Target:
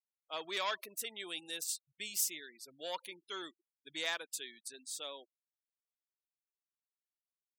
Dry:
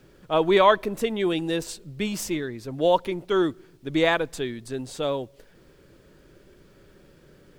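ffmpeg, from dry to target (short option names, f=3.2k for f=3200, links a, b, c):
-af "asoftclip=type=tanh:threshold=-11.5dB,aderivative,afftfilt=real='re*gte(hypot(re,im),0.00282)':imag='im*gte(hypot(re,im),0.00282)':win_size=1024:overlap=0.75"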